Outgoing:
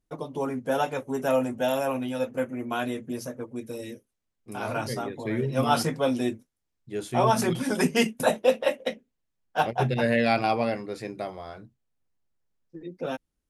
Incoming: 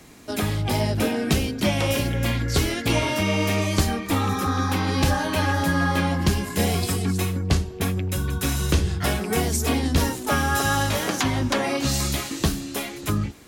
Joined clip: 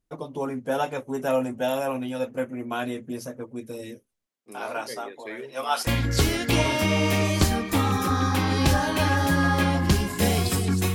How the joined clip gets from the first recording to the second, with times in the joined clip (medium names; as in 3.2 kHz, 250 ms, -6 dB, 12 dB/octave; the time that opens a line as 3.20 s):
outgoing
4.25–5.87 s: high-pass 270 Hz -> 800 Hz
5.87 s: go over to incoming from 2.24 s